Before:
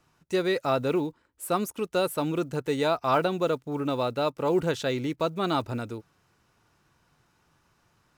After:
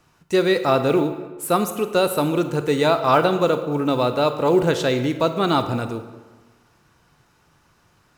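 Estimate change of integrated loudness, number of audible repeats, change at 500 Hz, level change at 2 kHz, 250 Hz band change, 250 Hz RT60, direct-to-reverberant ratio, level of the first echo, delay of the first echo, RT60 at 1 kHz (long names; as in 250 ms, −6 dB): +7.5 dB, no echo audible, +7.5 dB, +7.5 dB, +7.5 dB, 1.3 s, 9.0 dB, no echo audible, no echo audible, 1.4 s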